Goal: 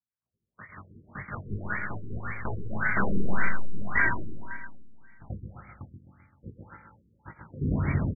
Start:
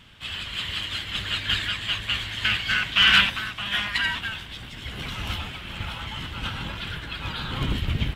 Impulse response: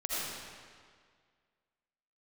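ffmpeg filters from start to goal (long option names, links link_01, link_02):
-filter_complex "[0:a]agate=range=-50dB:threshold=-27dB:ratio=16:detection=peak,highpass=92,equalizer=frequency=2000:width=4.1:gain=4,dynaudnorm=framelen=110:gausssize=9:maxgain=4.5dB,flanger=delay=16.5:depth=5.3:speed=0.43,aeval=exprs='clip(val(0),-1,0.0794)':channel_layout=same,aphaser=in_gain=1:out_gain=1:delay=2.3:decay=0.24:speed=1:type=triangular,aecho=1:1:130|260|390|520|650|780:0.562|0.264|0.124|0.0584|0.0274|0.0129,asplit=2[link_01][link_02];[1:a]atrim=start_sample=2205[link_03];[link_02][link_03]afir=irnorm=-1:irlink=0,volume=-15dB[link_04];[link_01][link_04]amix=inputs=2:normalize=0,afftfilt=real='re*lt(b*sr/1024,460*pow(2400/460,0.5+0.5*sin(2*PI*1.8*pts/sr)))':imag='im*lt(b*sr/1024,460*pow(2400/460,0.5+0.5*sin(2*PI*1.8*pts/sr)))':win_size=1024:overlap=0.75"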